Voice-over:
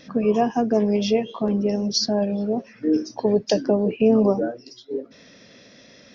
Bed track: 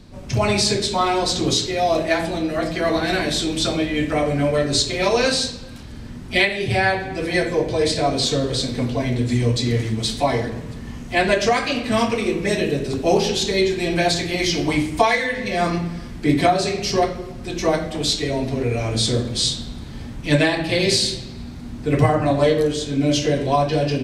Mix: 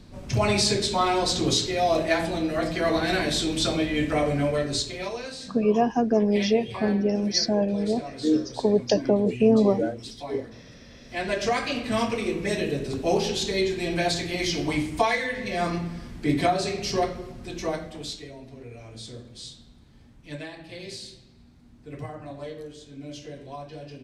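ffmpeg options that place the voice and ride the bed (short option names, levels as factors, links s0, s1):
-filter_complex "[0:a]adelay=5400,volume=0.841[s0];[1:a]volume=2.66,afade=t=out:st=4.27:d=0.96:silence=0.188365,afade=t=in:st=11.01:d=0.55:silence=0.251189,afade=t=out:st=17.23:d=1.12:silence=0.188365[s1];[s0][s1]amix=inputs=2:normalize=0"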